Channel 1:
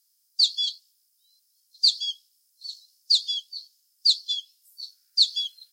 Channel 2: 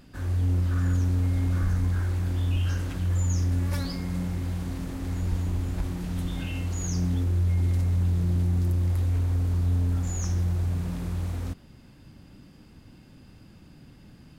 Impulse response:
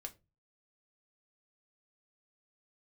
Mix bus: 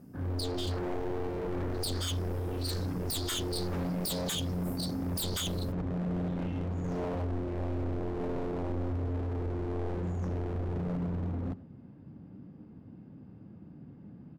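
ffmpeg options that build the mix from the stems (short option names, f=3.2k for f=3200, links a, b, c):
-filter_complex "[0:a]acompressor=threshold=-26dB:ratio=6,volume=-1.5dB,afade=t=in:st=1.63:d=0.7:silence=0.281838[a];[1:a]highpass=110,equalizer=f=190:t=o:w=1:g=3,adynamicsmooth=sensitivity=1:basefreq=820,volume=-1dB,asplit=3[b][c][d];[c]volume=-3dB[e];[d]volume=-16.5dB[f];[2:a]atrim=start_sample=2205[g];[e][g]afir=irnorm=-1:irlink=0[h];[f]aecho=0:1:100:1[i];[a][b][h][i]amix=inputs=4:normalize=0,highshelf=f=6.3k:g=8.5,aeval=exprs='0.0398*(abs(mod(val(0)/0.0398+3,4)-2)-1)':c=same"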